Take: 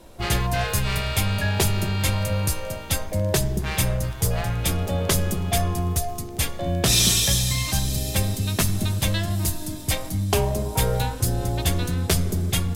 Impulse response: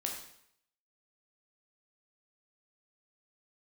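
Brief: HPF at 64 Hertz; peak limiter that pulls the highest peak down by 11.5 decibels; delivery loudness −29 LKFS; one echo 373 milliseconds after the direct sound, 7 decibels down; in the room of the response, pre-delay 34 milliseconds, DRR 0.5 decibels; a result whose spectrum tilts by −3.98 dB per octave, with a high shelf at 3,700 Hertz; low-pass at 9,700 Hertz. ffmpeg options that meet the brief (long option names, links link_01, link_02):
-filter_complex "[0:a]highpass=64,lowpass=9700,highshelf=frequency=3700:gain=8.5,alimiter=limit=-14.5dB:level=0:latency=1,aecho=1:1:373:0.447,asplit=2[link_01][link_02];[1:a]atrim=start_sample=2205,adelay=34[link_03];[link_02][link_03]afir=irnorm=-1:irlink=0,volume=-2dB[link_04];[link_01][link_04]amix=inputs=2:normalize=0,volume=-7.5dB"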